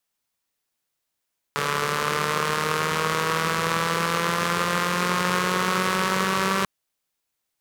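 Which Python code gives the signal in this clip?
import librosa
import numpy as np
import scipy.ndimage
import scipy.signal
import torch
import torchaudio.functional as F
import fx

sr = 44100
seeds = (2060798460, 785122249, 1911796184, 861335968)

y = fx.engine_four_rev(sr, seeds[0], length_s=5.09, rpm=4300, resonances_hz=(190.0, 450.0, 1100.0), end_rpm=5800)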